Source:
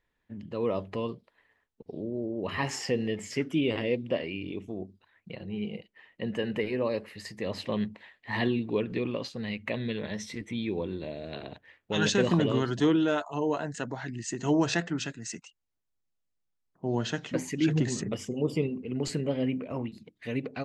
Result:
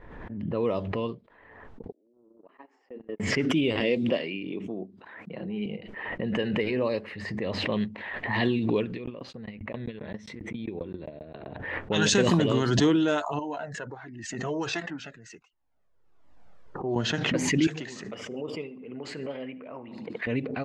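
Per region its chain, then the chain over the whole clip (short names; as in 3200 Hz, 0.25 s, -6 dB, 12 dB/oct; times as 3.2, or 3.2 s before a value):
1.92–3.2 steep high-pass 240 Hz 48 dB/oct + gate -29 dBFS, range -60 dB + compressor 3:1, threshold -49 dBFS
3.8–5.66 HPF 150 Hz 24 dB/oct + high shelf 4200 Hz +6.5 dB
8.94–11.46 high shelf 5300 Hz +11 dB + dB-ramp tremolo decaying 7.5 Hz, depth 38 dB
13.39–16.96 tone controls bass -8 dB, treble +5 dB + cascading flanger falling 1.4 Hz
17.67–20.27 HPF 1100 Hz 6 dB/oct + feedback echo 74 ms, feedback 40%, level -17.5 dB
whole clip: low-pass opened by the level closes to 1100 Hz, open at -21.5 dBFS; high shelf 7000 Hz +9 dB; backwards sustainer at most 37 dB/s; gain +1.5 dB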